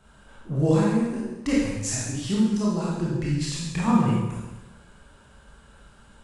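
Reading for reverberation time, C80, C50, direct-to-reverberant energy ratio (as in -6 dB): 1.1 s, 2.0 dB, -1.0 dB, -6.5 dB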